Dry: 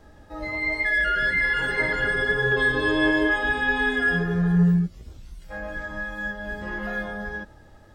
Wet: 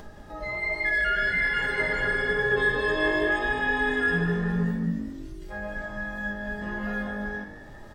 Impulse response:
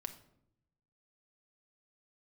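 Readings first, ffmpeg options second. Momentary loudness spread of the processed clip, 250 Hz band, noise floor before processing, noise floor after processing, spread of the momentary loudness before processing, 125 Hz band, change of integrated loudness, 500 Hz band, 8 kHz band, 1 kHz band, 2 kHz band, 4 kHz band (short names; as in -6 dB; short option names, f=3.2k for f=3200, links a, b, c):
14 LU, -4.5 dB, -50 dBFS, -44 dBFS, 13 LU, -6.0 dB, -3.0 dB, -0.5 dB, n/a, -1.5 dB, -2.5 dB, -3.5 dB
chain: -filter_complex "[0:a]acompressor=mode=upward:threshold=-34dB:ratio=2.5,asplit=6[a][b][c][d][e][f];[b]adelay=201,afreqshift=49,volume=-10.5dB[g];[c]adelay=402,afreqshift=98,volume=-17.6dB[h];[d]adelay=603,afreqshift=147,volume=-24.8dB[i];[e]adelay=804,afreqshift=196,volume=-31.9dB[j];[f]adelay=1005,afreqshift=245,volume=-39dB[k];[a][g][h][i][j][k]amix=inputs=6:normalize=0[l];[1:a]atrim=start_sample=2205,atrim=end_sample=6174[m];[l][m]afir=irnorm=-1:irlink=0"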